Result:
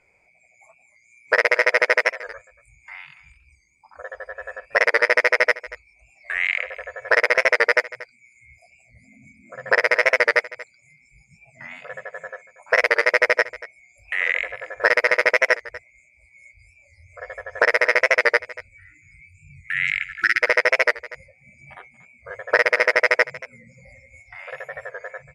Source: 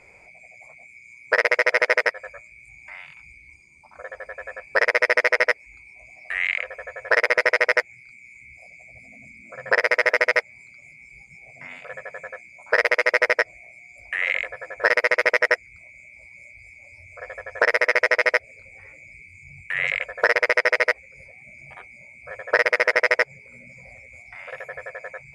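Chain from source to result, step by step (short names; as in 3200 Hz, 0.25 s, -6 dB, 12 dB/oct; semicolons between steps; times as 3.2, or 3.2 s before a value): spectral delete 18.56–20.43, 360–1300 Hz; spectral noise reduction 13 dB; on a send: echo 0.234 s -18 dB; on the sum: record warp 45 rpm, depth 100 cents; gain +1.5 dB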